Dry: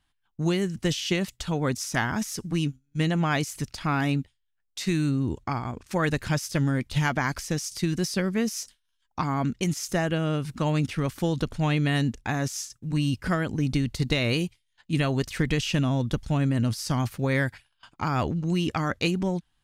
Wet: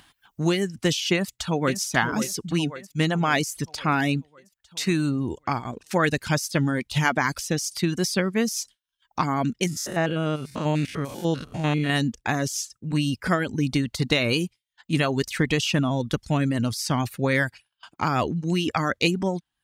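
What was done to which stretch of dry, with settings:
0:01.13–0:01.78: delay throw 540 ms, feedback 60%, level −8 dB
0:09.67–0:11.90: spectrum averaged block by block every 100 ms
whole clip: reverb reduction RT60 0.64 s; high-pass filter 180 Hz 6 dB per octave; upward compression, threshold −48 dBFS; level +5 dB

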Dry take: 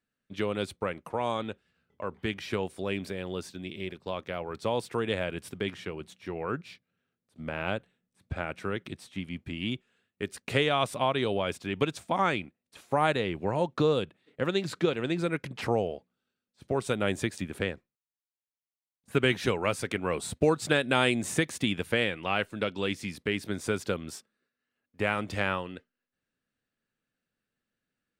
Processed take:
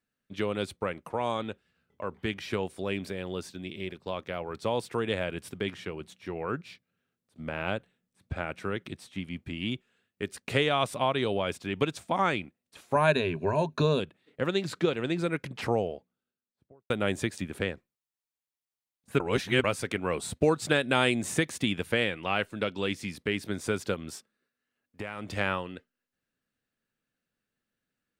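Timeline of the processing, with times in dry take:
0:12.94–0:14.00: EQ curve with evenly spaced ripples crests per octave 1.5, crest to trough 12 dB
0:15.68–0:16.90: fade out and dull
0:19.20–0:19.64: reverse
0:23.94–0:25.37: downward compressor, threshold −32 dBFS

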